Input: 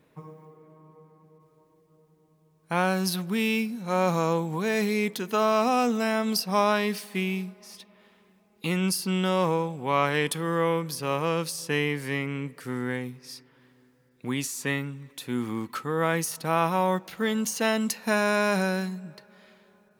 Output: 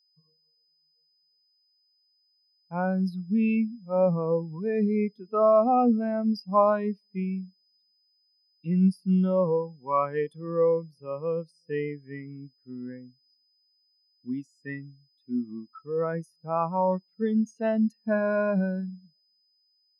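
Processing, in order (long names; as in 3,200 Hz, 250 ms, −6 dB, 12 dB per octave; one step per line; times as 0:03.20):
steady tone 5,000 Hz −43 dBFS
every bin expanded away from the loudest bin 2.5 to 1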